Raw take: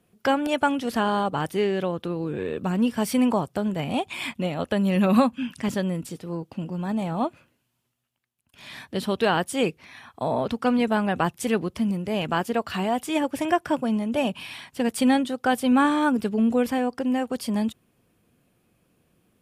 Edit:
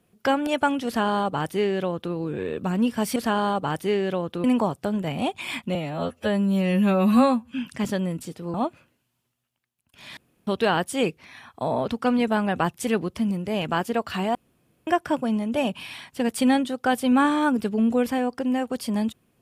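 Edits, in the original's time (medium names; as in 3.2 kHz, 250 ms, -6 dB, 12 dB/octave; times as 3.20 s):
0.86–2.14 s: copy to 3.16 s
4.47–5.35 s: stretch 2×
6.38–7.14 s: delete
8.77–9.07 s: room tone
12.95–13.47 s: room tone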